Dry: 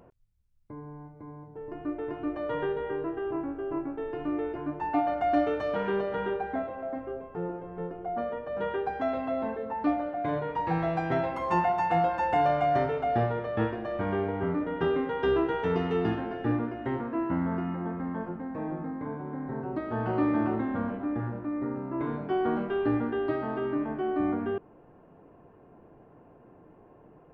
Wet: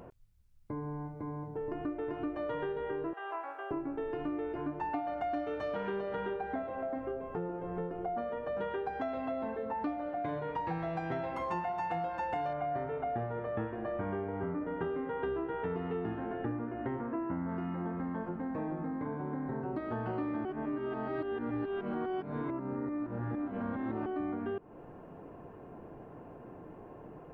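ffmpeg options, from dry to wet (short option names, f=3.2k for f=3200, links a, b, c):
-filter_complex "[0:a]asettb=1/sr,asplit=3[a][b][c];[a]atrim=end=3.134[d];[b]atrim=start=3.13:end=3.71,asetpts=PTS-STARTPTS,afade=t=in:d=0.004:c=qsin,afade=t=out:st=0.576:d=0.004:c=qsin,highpass=f=680:w=0.5412,highpass=f=680:w=1.3066[e];[c]atrim=start=3.706[f];[d][e]acrossfade=d=0.004:c1=hsin:c2=qsin[g];[g][f]acrossfade=d=0.004:c1=qsin:c2=hsin,asettb=1/sr,asplit=3[h][i][j];[h]atrim=end=12.534[k];[i]atrim=start=12.53:end=17.49,asetpts=PTS-STARTPTS,afade=t=in:d=0.004:c=qsin,afade=t=out:st=4.956:d=0.004:c=qsin,lowpass=2.1k[l];[j]atrim=start=17.486[m];[k][l]acrossfade=d=0.004:c1=hsin:c2=qsin[n];[n][m]acrossfade=d=0.004:c1=qsin:c2=hsin,asplit=3[o][p][q];[o]atrim=end=20.452[r];[p]atrim=start=20.448:end=24.062,asetpts=PTS-STARTPTS,areverse[s];[q]atrim=start=24.058[t];[r][s]acrossfade=d=0.004:c1=hsin:c2=hsin[u];[u][t]acrossfade=d=0.004:c1=hsin:c2=hsin,acompressor=threshold=-40dB:ratio=5,volume=5.5dB"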